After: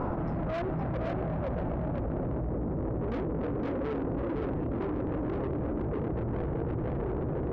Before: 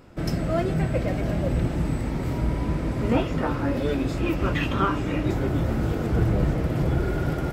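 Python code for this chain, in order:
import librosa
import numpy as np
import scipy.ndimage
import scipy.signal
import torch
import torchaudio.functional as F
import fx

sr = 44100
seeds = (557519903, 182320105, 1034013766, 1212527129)

y = fx.filter_sweep_lowpass(x, sr, from_hz=990.0, to_hz=470.0, start_s=1.15, end_s=2.57, q=2.2)
y = 10.0 ** (-25.5 / 20.0) * np.tanh(y / 10.0 ** (-25.5 / 20.0))
y = y + 10.0 ** (-3.5 / 20.0) * np.pad(y, (int(514 * sr / 1000.0), 0))[:len(y)]
y = fx.env_flatten(y, sr, amount_pct=100)
y = y * 10.0 ** (-7.0 / 20.0)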